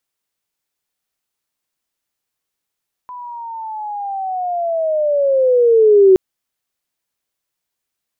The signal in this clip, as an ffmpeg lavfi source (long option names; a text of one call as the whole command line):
ffmpeg -f lavfi -i "aevalsrc='pow(10,(-28.5+24*t/3.07)/20)*sin(2*PI*(1000*t-630*t*t/(2*3.07)))':duration=3.07:sample_rate=44100" out.wav